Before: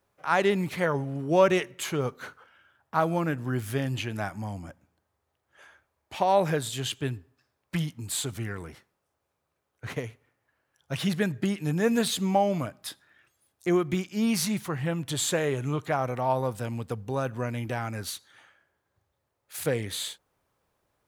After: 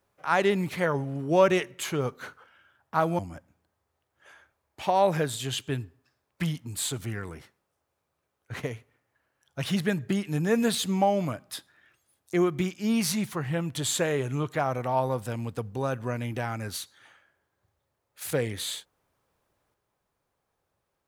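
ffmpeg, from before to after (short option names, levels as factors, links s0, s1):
-filter_complex "[0:a]asplit=2[s0][s1];[s0]atrim=end=3.192[s2];[s1]atrim=start=4.518[s3];[s2][s3]acrossfade=d=0.004:c1=hsin:c2=hsin"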